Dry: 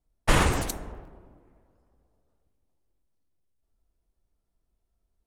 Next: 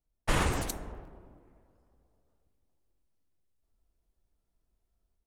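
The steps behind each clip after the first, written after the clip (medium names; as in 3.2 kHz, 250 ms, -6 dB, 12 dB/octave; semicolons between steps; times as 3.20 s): level rider gain up to 6.5 dB; trim -7.5 dB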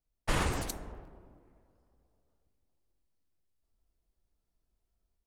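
peaking EQ 4.7 kHz +2.5 dB 0.39 oct; trim -2.5 dB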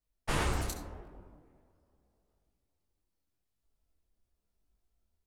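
reverberation RT60 0.45 s, pre-delay 62 ms, DRR 9 dB; detune thickener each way 29 cents; trim +3 dB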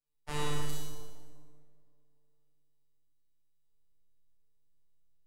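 robot voice 148 Hz; Schroeder reverb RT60 1.2 s, combs from 26 ms, DRR -4 dB; trim -6 dB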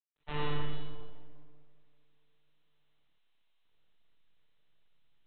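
G.726 32 kbps 8 kHz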